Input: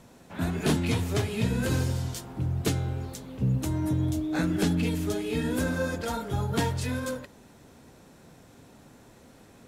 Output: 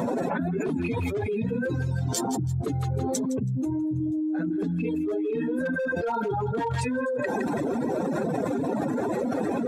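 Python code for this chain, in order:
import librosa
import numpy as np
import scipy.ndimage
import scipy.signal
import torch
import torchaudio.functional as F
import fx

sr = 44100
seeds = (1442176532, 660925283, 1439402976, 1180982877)

y = fx.spec_expand(x, sr, power=2.1)
y = fx.dereverb_blind(y, sr, rt60_s=0.59)
y = scipy.signal.sosfilt(scipy.signal.butter(2, 420.0, 'highpass', fs=sr, output='sos'), y)
y = fx.peak_eq(y, sr, hz=5000.0, db=-4.5, octaves=1.6)
y = fx.notch(y, sr, hz=3000.0, q=10.0)
y = np.clip(y, -10.0 ** (-28.5 / 20.0), 10.0 ** (-28.5 / 20.0))
y = fx.echo_wet_highpass(y, sr, ms=163, feedback_pct=31, hz=1400.0, wet_db=-17.0)
y = fx.env_flatten(y, sr, amount_pct=100)
y = y * 10.0 ** (3.0 / 20.0)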